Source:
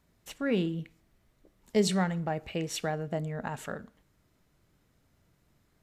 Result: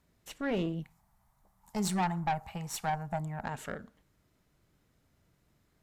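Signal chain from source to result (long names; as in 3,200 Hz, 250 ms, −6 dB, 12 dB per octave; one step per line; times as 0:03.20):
0:00.82–0:03.44: drawn EQ curve 200 Hz 0 dB, 310 Hz −19 dB, 540 Hz −10 dB, 840 Hz +13 dB, 1,400 Hz +1 dB, 2,800 Hz −8 dB, 11,000 Hz +5 dB
tube saturation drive 26 dB, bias 0.6
level +1 dB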